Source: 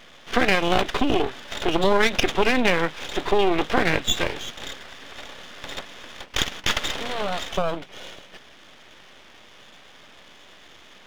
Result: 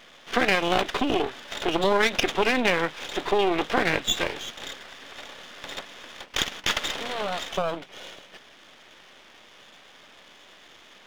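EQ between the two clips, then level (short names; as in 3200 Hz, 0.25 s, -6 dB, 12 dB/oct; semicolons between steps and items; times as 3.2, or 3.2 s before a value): low shelf 140 Hz -8.5 dB; -1.5 dB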